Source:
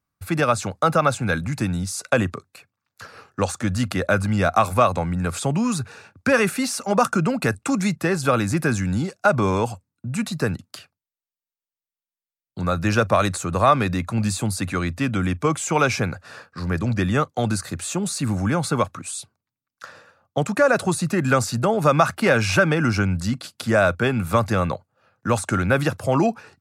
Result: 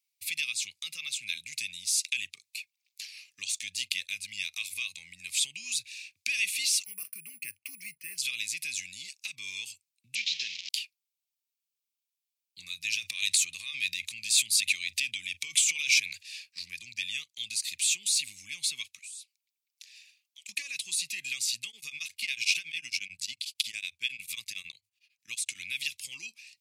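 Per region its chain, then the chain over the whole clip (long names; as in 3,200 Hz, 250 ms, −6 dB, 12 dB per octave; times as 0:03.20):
0:06.84–0:08.18: moving average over 12 samples + bad sample-rate conversion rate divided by 4×, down none, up hold
0:10.15–0:10.69: linear delta modulator 32 kbit/s, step −28.5 dBFS + high-pass filter 200 Hz
0:12.92–0:16.23: transient designer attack +5 dB, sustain +11 dB + downward compressor 4 to 1, threshold −16 dBFS
0:18.99–0:20.49: high-pass filter 1,300 Hz + downward compressor, threshold −47 dBFS
0:21.68–0:25.59: mains-hum notches 50/100 Hz + tremolo along a rectified sine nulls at 11 Hz
whole clip: downward compressor 2 to 1, threshold −31 dBFS; elliptic high-pass filter 2,300 Hz, stop band 40 dB; dynamic equaliser 3,300 Hz, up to +6 dB, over −53 dBFS, Q 1.9; level +6 dB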